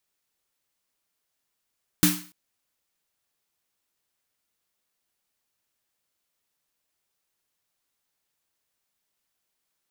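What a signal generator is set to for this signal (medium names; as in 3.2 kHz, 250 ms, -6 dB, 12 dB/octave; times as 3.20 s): snare drum length 0.29 s, tones 180 Hz, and 300 Hz, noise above 940 Hz, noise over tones -1 dB, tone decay 0.36 s, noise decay 0.42 s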